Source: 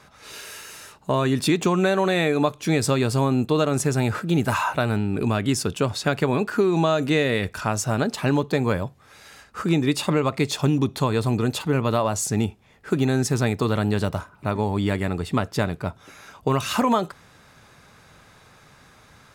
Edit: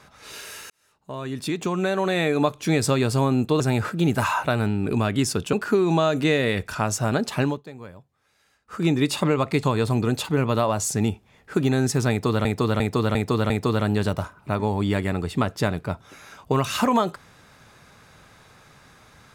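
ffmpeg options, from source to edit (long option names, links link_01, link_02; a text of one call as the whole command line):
ffmpeg -i in.wav -filter_complex "[0:a]asplit=11[link_01][link_02][link_03][link_04][link_05][link_06][link_07][link_08][link_09][link_10][link_11];[link_01]atrim=end=0.7,asetpts=PTS-STARTPTS,afade=type=out:start_time=0.696:duration=0.004:curve=hsin[link_12];[link_02]atrim=start=0.7:end=3.602,asetpts=PTS-STARTPTS,afade=type=in:duration=1.75[link_13];[link_03]atrim=start=3.898:end=5.832[link_14];[link_04]atrim=start=6.388:end=8.49,asetpts=PTS-STARTPTS,afade=type=out:start_time=1.872:duration=0.23:silence=0.125893[link_15];[link_05]atrim=start=8.49:end=9.51,asetpts=PTS-STARTPTS,volume=-18dB[link_16];[link_06]atrim=start=9.51:end=10.492,asetpts=PTS-STARTPTS,afade=type=in:duration=0.23:silence=0.125893[link_17];[link_07]atrim=start=10.988:end=13.812[link_18];[link_08]atrim=start=13.458:end=13.812[link_19];[link_09]atrim=start=13.458:end=13.812[link_20];[link_10]atrim=start=13.458:end=13.812[link_21];[link_11]atrim=start=13.458[link_22];[link_12][link_13]concat=n=2:v=0:a=1[link_23];[link_23][link_14]acrossfade=duration=0.004:curve1=hsin:curve2=hsin[link_24];[link_15][link_16][link_17]concat=n=3:v=0:a=1[link_25];[link_24][link_25]acrossfade=duration=0.004:curve1=hsin:curve2=hsin[link_26];[link_26][link_18]acrossfade=duration=0.004:curve1=hsin:curve2=hsin[link_27];[link_27][link_19]acrossfade=duration=0.004:curve1=hsin:curve2=hsin[link_28];[link_28][link_20]acrossfade=duration=0.004:curve1=hsin:curve2=hsin[link_29];[link_29][link_21]acrossfade=duration=0.004:curve1=hsin:curve2=hsin[link_30];[link_30][link_22]acrossfade=duration=0.004:curve1=hsin:curve2=hsin" out.wav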